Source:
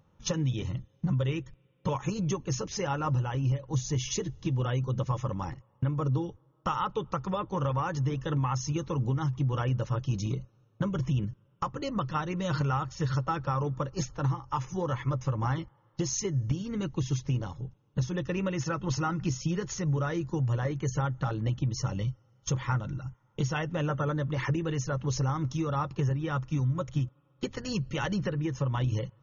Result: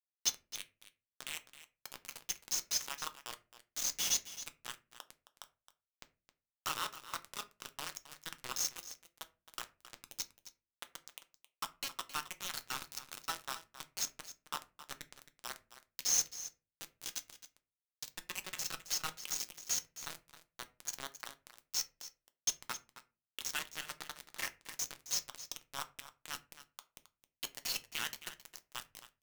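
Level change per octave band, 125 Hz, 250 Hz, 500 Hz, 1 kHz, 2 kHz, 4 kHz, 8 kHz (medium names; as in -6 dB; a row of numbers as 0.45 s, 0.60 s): -37.5 dB, -29.5 dB, -23.0 dB, -13.0 dB, -5.5 dB, +2.0 dB, no reading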